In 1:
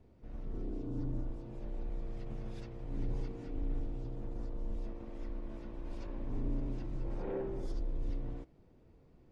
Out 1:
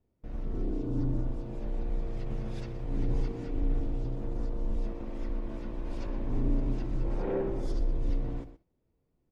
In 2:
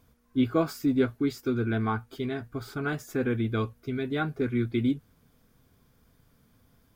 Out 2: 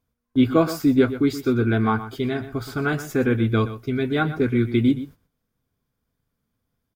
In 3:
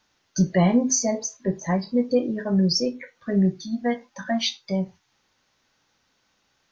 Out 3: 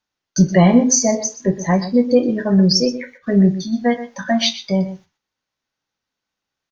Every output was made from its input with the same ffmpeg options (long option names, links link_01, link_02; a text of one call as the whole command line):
ffmpeg -i in.wav -filter_complex "[0:a]agate=range=-21dB:threshold=-51dB:ratio=16:detection=peak,asplit=2[link_01][link_02];[link_02]adelay=122.4,volume=-13dB,highshelf=frequency=4000:gain=-2.76[link_03];[link_01][link_03]amix=inputs=2:normalize=0,volume=7dB" out.wav